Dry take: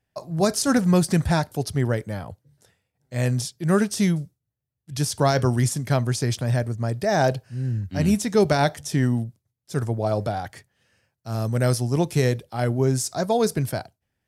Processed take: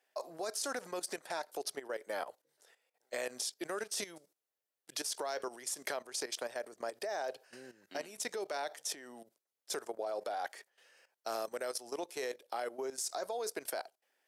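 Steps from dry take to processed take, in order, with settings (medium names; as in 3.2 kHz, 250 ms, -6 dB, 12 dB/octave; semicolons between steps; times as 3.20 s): compression 20:1, threshold -29 dBFS, peak gain reduction 16.5 dB; high-pass 410 Hz 24 dB/octave; level held to a coarse grid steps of 14 dB; trim +5 dB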